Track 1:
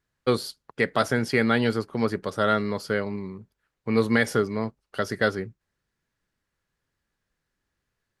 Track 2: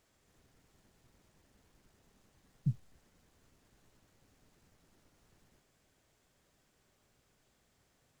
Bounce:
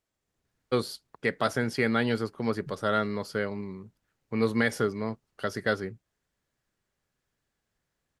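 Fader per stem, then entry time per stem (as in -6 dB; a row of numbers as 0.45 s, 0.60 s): -4.0 dB, -11.5 dB; 0.45 s, 0.00 s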